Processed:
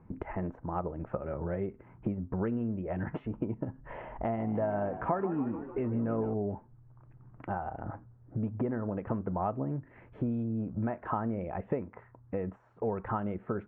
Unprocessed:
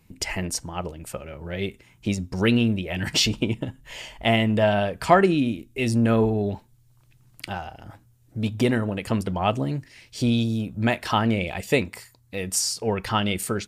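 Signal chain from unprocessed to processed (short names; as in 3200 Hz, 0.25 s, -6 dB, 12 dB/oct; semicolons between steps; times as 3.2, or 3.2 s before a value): compressor 6:1, threshold -35 dBFS, peak gain reduction 22.5 dB; inverse Chebyshev low-pass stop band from 4500 Hz, stop band 60 dB; low shelf 110 Hz -6 dB; 4.2–6.34 frequency-shifting echo 0.152 s, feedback 65%, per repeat +49 Hz, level -13 dB; gain +6 dB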